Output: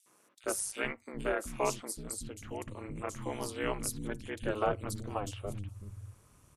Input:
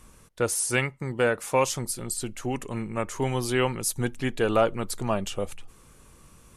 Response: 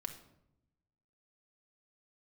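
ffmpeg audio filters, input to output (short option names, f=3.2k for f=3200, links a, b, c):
-filter_complex "[0:a]aeval=exprs='val(0)*sin(2*PI*100*n/s)':c=same,acrossover=split=250|3400[a][b][c];[b]adelay=60[d];[a]adelay=440[e];[e][d][c]amix=inputs=3:normalize=0,volume=-5.5dB"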